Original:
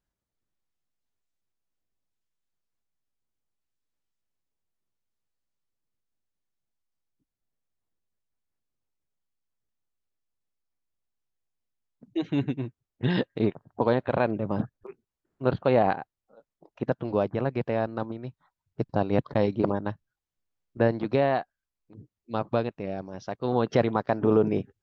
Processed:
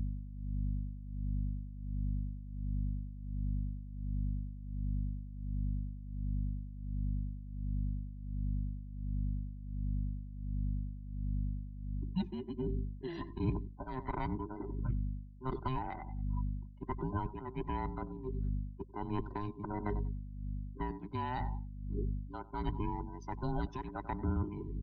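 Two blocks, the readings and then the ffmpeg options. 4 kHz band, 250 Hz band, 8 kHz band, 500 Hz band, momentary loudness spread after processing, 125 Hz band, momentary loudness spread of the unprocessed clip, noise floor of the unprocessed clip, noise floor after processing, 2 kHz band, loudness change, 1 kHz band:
-13.5 dB, -9.5 dB, no reading, -18.0 dB, 6 LU, -2.5 dB, 12 LU, under -85 dBFS, -48 dBFS, -14.5 dB, -12.5 dB, -9.0 dB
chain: -filter_complex "[0:a]afftfilt=real='real(if(between(b,1,1008),(2*floor((b-1)/24)+1)*24-b,b),0)':imag='imag(if(between(b,1,1008),(2*floor((b-1)/24)+1)*24-b,b),0)*if(between(b,1,1008),-1,1)':win_size=2048:overlap=0.75,aecho=1:1:94|188|282:0.133|0.0467|0.0163,aeval=exprs='val(0)+0.0112*(sin(2*PI*50*n/s)+sin(2*PI*2*50*n/s)/2+sin(2*PI*3*50*n/s)/3+sin(2*PI*4*50*n/s)/4+sin(2*PI*5*50*n/s)/5)':c=same,afftdn=nr=19:nf=-43,areverse,acompressor=threshold=0.0158:ratio=5,areverse,tremolo=f=1.4:d=0.76,aemphasis=mode=production:type=50fm,acrossover=split=180|3000[s0][s1][s2];[s1]acompressor=threshold=0.00708:ratio=6[s3];[s0][s3][s2]amix=inputs=3:normalize=0,highshelf=f=2100:g=-6,volume=2.51"

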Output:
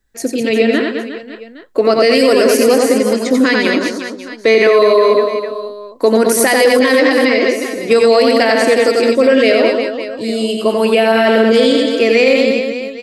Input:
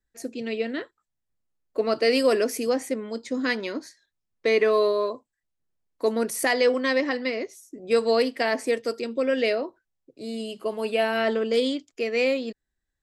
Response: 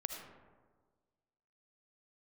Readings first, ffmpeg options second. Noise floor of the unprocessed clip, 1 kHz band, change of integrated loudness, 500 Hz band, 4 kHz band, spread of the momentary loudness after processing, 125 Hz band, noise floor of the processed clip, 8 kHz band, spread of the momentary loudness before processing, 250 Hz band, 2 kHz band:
-82 dBFS, +13.5 dB, +13.0 dB, +13.5 dB, +13.5 dB, 11 LU, no reading, -34 dBFS, +15.0 dB, 13 LU, +15.0 dB, +13.5 dB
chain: -af "aecho=1:1:90|207|359.1|556.8|813.9:0.631|0.398|0.251|0.158|0.1,alimiter=level_in=5.96:limit=0.891:release=50:level=0:latency=1,volume=0.891"

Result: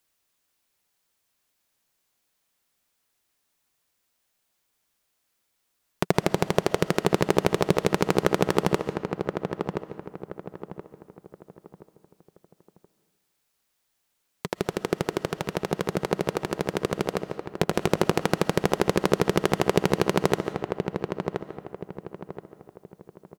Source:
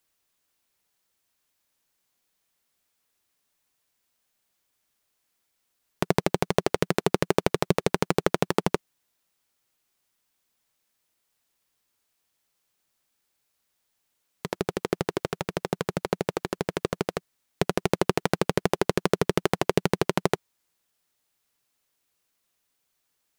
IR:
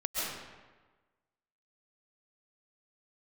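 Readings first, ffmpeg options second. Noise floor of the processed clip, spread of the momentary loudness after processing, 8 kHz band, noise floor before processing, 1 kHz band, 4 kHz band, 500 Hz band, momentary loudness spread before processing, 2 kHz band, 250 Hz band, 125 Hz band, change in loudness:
-75 dBFS, 16 LU, +1.0 dB, -76 dBFS, +2.0 dB, +1.0 dB, +2.0 dB, 7 LU, +1.5 dB, +2.5 dB, +2.0 dB, +1.0 dB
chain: -filter_complex "[0:a]asplit=2[s0][s1];[s1]adelay=1025,lowpass=f=1600:p=1,volume=0.501,asplit=2[s2][s3];[s3]adelay=1025,lowpass=f=1600:p=1,volume=0.36,asplit=2[s4][s5];[s5]adelay=1025,lowpass=f=1600:p=1,volume=0.36,asplit=2[s6][s7];[s7]adelay=1025,lowpass=f=1600:p=1,volume=0.36[s8];[s0][s2][s4][s6][s8]amix=inputs=5:normalize=0,asplit=2[s9][s10];[1:a]atrim=start_sample=2205[s11];[s10][s11]afir=irnorm=-1:irlink=0,volume=0.112[s12];[s9][s12]amix=inputs=2:normalize=0"

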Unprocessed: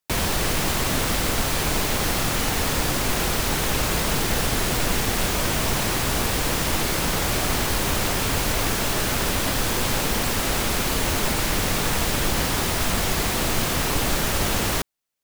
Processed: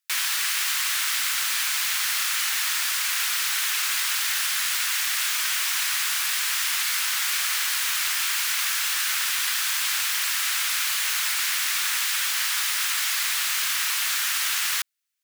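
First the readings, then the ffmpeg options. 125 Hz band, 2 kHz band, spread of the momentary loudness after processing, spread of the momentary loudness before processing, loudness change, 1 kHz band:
under -40 dB, +1.5 dB, 0 LU, 0 LU, 0.0 dB, -7.5 dB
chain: -af "highpass=f=1400:w=0.5412,highpass=f=1400:w=1.3066,volume=1.26"

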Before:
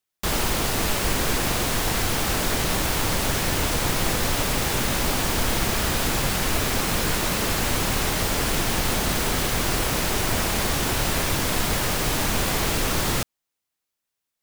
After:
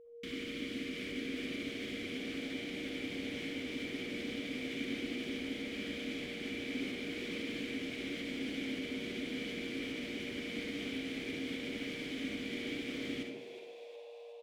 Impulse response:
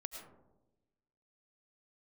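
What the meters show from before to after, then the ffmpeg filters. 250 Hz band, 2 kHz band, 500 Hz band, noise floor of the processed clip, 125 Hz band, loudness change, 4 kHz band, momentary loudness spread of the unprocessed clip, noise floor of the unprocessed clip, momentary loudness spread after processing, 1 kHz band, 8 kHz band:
-9.0 dB, -14.5 dB, -14.0 dB, -50 dBFS, -25.0 dB, -16.5 dB, -16.0 dB, 0 LU, -83 dBFS, 2 LU, -30.0 dB, -30.5 dB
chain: -filter_complex "[0:a]alimiter=limit=0.119:level=0:latency=1:release=208,asplit=3[s0][s1][s2];[s0]bandpass=f=270:t=q:w=8,volume=1[s3];[s1]bandpass=f=2290:t=q:w=8,volume=0.501[s4];[s2]bandpass=f=3010:t=q:w=8,volume=0.355[s5];[s3][s4][s5]amix=inputs=3:normalize=0,aeval=exprs='val(0)+0.00178*sin(2*PI*470*n/s)':c=same,asplit=8[s6][s7][s8][s9][s10][s11][s12][s13];[s7]adelay=365,afreqshift=110,volume=0.224[s14];[s8]adelay=730,afreqshift=220,volume=0.135[s15];[s9]adelay=1095,afreqshift=330,volume=0.0804[s16];[s10]adelay=1460,afreqshift=440,volume=0.0484[s17];[s11]adelay=1825,afreqshift=550,volume=0.0292[s18];[s12]adelay=2190,afreqshift=660,volume=0.0174[s19];[s13]adelay=2555,afreqshift=770,volume=0.0105[s20];[s6][s14][s15][s16][s17][s18][s19][s20]amix=inputs=8:normalize=0[s21];[1:a]atrim=start_sample=2205,asetrate=79380,aresample=44100[s22];[s21][s22]afir=irnorm=-1:irlink=0,volume=3.35"

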